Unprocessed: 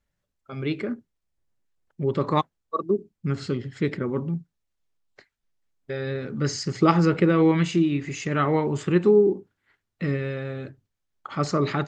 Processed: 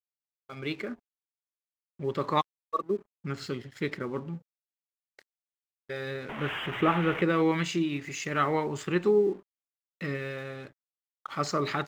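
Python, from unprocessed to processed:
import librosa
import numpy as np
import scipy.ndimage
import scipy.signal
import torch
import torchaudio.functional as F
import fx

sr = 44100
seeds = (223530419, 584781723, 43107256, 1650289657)

y = fx.delta_mod(x, sr, bps=16000, step_db=-25.0, at=(6.29, 7.22))
y = fx.low_shelf(y, sr, hz=470.0, db=-10.0)
y = np.sign(y) * np.maximum(np.abs(y) - 10.0 ** (-54.0 / 20.0), 0.0)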